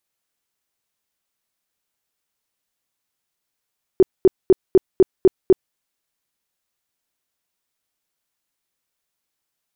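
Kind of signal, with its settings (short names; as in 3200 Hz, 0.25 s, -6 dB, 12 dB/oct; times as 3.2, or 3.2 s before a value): tone bursts 377 Hz, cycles 10, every 0.25 s, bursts 7, -6.5 dBFS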